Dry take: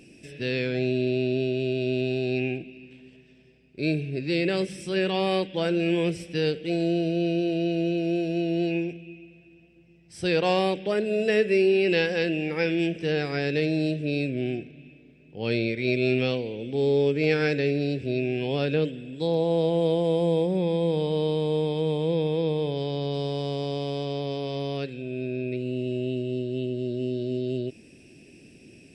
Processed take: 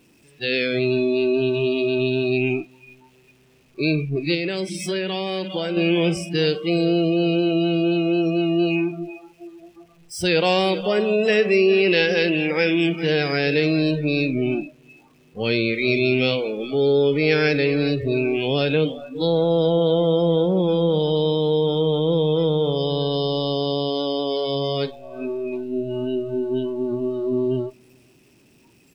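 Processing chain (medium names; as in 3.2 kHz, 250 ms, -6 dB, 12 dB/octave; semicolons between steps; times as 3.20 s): jump at every zero crossing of -37.5 dBFS; on a send: feedback delay 407 ms, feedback 42%, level -14 dB; on the sum: dynamic bell 3.7 kHz, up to +5 dB, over -42 dBFS, Q 0.84; spectral noise reduction 22 dB; in parallel at +0.5 dB: peak limiter -20 dBFS, peak gain reduction 10.5 dB; 4.34–5.77 s: on the sum: compression, threshold -22 dBFS, peak gain reduction 7 dB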